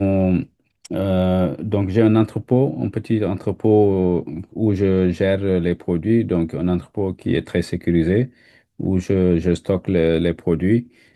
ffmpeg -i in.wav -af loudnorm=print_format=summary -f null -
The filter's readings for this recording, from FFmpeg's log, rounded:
Input Integrated:    -19.5 LUFS
Input True Peak:      -3.1 dBTP
Input LRA:             2.0 LU
Input Threshold:     -29.9 LUFS